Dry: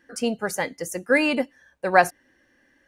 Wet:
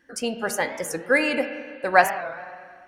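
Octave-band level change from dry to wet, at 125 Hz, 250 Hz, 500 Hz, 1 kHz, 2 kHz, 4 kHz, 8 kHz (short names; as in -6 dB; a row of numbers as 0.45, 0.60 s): -3.5, -3.0, -0.5, +1.0, +1.5, 0.0, +1.0 dB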